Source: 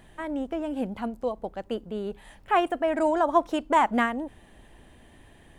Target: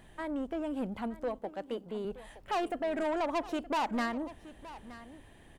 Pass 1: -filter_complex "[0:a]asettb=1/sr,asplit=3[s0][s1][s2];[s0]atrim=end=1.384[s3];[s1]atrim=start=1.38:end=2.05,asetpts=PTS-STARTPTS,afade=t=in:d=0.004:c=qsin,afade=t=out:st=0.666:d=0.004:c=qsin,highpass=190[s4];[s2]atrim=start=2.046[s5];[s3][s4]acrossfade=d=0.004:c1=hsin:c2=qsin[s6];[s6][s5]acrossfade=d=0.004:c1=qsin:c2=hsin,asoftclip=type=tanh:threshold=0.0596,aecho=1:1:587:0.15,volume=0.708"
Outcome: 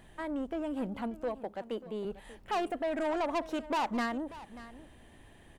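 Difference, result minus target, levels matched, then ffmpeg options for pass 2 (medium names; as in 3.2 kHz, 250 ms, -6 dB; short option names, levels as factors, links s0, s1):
echo 334 ms early
-filter_complex "[0:a]asettb=1/sr,asplit=3[s0][s1][s2];[s0]atrim=end=1.384[s3];[s1]atrim=start=1.38:end=2.05,asetpts=PTS-STARTPTS,afade=t=in:d=0.004:c=qsin,afade=t=out:st=0.666:d=0.004:c=qsin,highpass=190[s4];[s2]atrim=start=2.046[s5];[s3][s4]acrossfade=d=0.004:c1=hsin:c2=qsin[s6];[s6][s5]acrossfade=d=0.004:c1=qsin:c2=hsin,asoftclip=type=tanh:threshold=0.0596,aecho=1:1:921:0.15,volume=0.708"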